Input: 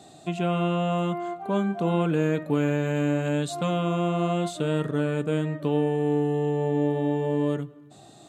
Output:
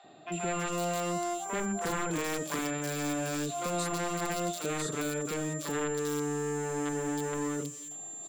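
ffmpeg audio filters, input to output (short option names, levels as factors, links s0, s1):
-filter_complex "[0:a]highpass=f=410:p=1,aeval=exprs='(mod(8.91*val(0)+1,2)-1)/8.91':c=same,aeval=exprs='val(0)+0.00891*sin(2*PI*7300*n/s)':c=same,asoftclip=type=hard:threshold=0.0376,acrossover=split=630|3300[s0][s1][s2];[s0]adelay=40[s3];[s2]adelay=320[s4];[s3][s1][s4]amix=inputs=3:normalize=0,volume=1.12"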